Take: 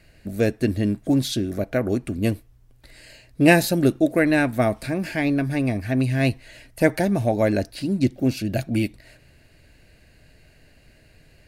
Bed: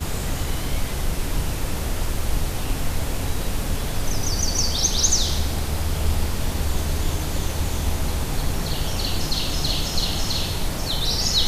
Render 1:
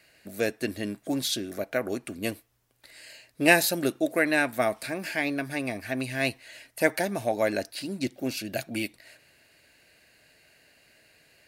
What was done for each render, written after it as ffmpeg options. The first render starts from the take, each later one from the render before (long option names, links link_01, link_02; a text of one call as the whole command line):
ffmpeg -i in.wav -af "highpass=frequency=780:poles=1,highshelf=frequency=12000:gain=4.5" out.wav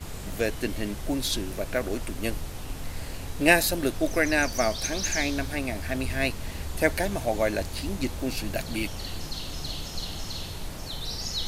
ffmpeg -i in.wav -i bed.wav -filter_complex "[1:a]volume=-11dB[link_01];[0:a][link_01]amix=inputs=2:normalize=0" out.wav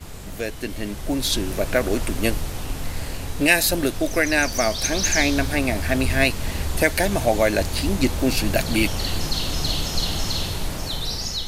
ffmpeg -i in.wav -filter_complex "[0:a]acrossover=split=1900[link_01][link_02];[link_01]alimiter=limit=-17dB:level=0:latency=1:release=230[link_03];[link_03][link_02]amix=inputs=2:normalize=0,dynaudnorm=framelen=540:gausssize=5:maxgain=10.5dB" out.wav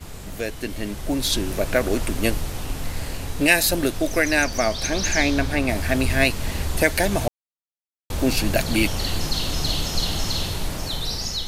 ffmpeg -i in.wav -filter_complex "[0:a]asettb=1/sr,asplit=3[link_01][link_02][link_03];[link_01]atrim=end=4.444[link_04];[link_02]atrim=start=4.44:end=5.69,asetpts=PTS-STARTPTS,afade=type=in:duration=0.004:curve=qsin,afade=type=out:start_time=1.246:duration=0.004:curve=qsin,highshelf=frequency=6800:gain=-8.5[link_05];[link_03]atrim=start=5.686[link_06];[link_04][link_05]acrossfade=duration=0.004:curve1=hsin:curve2=qsin[link_07];[link_07][link_06]acrossfade=duration=0.004:curve1=qsin:curve2=hsin,asplit=3[link_08][link_09][link_10];[link_08]atrim=end=7.28,asetpts=PTS-STARTPTS,afade=type=out:start_time=7.276:duration=0.004:curve=hsin[link_11];[link_09]atrim=start=7.28:end=8.1,asetpts=PTS-STARTPTS,volume=0[link_12];[link_10]atrim=start=8.1,asetpts=PTS-STARTPTS,afade=type=in:duration=0.004:curve=hsin[link_13];[link_11][link_12][link_13]concat=n=3:v=0:a=1" out.wav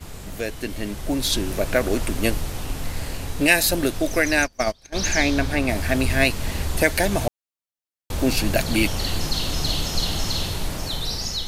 ffmpeg -i in.wav -filter_complex "[0:a]asplit=3[link_01][link_02][link_03];[link_01]afade=type=out:start_time=4.34:duration=0.02[link_04];[link_02]agate=range=-27dB:threshold=-21dB:ratio=16:release=100:detection=peak,afade=type=in:start_time=4.34:duration=0.02,afade=type=out:start_time=4.94:duration=0.02[link_05];[link_03]afade=type=in:start_time=4.94:duration=0.02[link_06];[link_04][link_05][link_06]amix=inputs=3:normalize=0" out.wav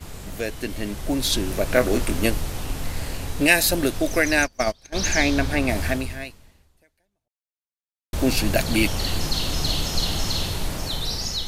ffmpeg -i in.wav -filter_complex "[0:a]asettb=1/sr,asplit=3[link_01][link_02][link_03];[link_01]atrim=end=1.684[link_04];[link_02]atrim=start=1.68:end=2.26,asetpts=PTS-STARTPTS,afade=type=in:duration=0.004:curve=qsin,afade=type=out:start_time=0.576:duration=0.004:curve=qsin,asplit=2[link_05][link_06];[link_06]adelay=24,volume=-6dB[link_07];[link_05][link_07]amix=inputs=2:normalize=0,atrim=end_sample=25578[link_08];[link_03]atrim=start=2.256[link_09];[link_04][link_08]acrossfade=duration=0.004:curve1=hsin:curve2=qsin[link_10];[link_10][link_09]acrossfade=duration=0.004:curve1=qsin:curve2=hsin,asplit=2[link_11][link_12];[link_11]atrim=end=8.13,asetpts=PTS-STARTPTS,afade=type=out:start_time=5.87:duration=2.26:curve=exp[link_13];[link_12]atrim=start=8.13,asetpts=PTS-STARTPTS,afade=type=in:duration=0.004:curve=hsin[link_14];[link_13][link_14]concat=n=2:v=0:a=1" out.wav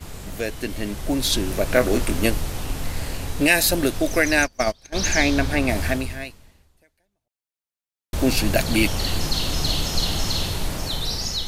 ffmpeg -i in.wav -af "volume=1dB,alimiter=limit=-3dB:level=0:latency=1" out.wav